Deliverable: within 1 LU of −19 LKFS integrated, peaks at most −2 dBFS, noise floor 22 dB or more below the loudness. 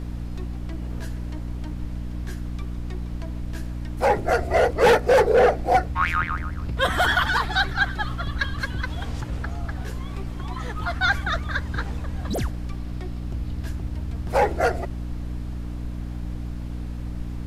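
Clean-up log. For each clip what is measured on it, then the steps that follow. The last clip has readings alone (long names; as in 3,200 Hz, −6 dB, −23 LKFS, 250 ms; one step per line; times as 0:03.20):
mains hum 60 Hz; hum harmonics up to 300 Hz; level of the hum −29 dBFS; background noise floor −32 dBFS; target noise floor −48 dBFS; integrated loudness −25.5 LKFS; sample peak −9.0 dBFS; target loudness −19.0 LKFS
→ hum removal 60 Hz, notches 5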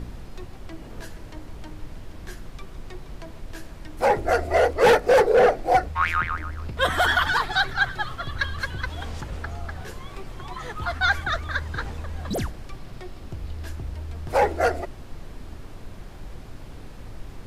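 mains hum none found; background noise floor −41 dBFS; target noise floor −46 dBFS
→ noise reduction from a noise print 6 dB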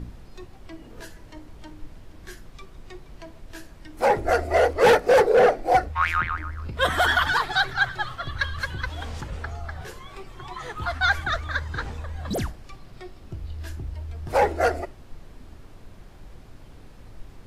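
background noise floor −47 dBFS; integrated loudness −23.5 LKFS; sample peak −10.0 dBFS; target loudness −19.0 LKFS
→ level +4.5 dB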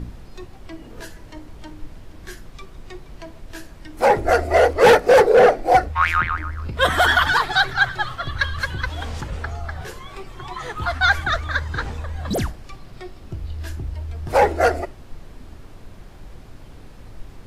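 integrated loudness −19.0 LKFS; sample peak −5.5 dBFS; background noise floor −42 dBFS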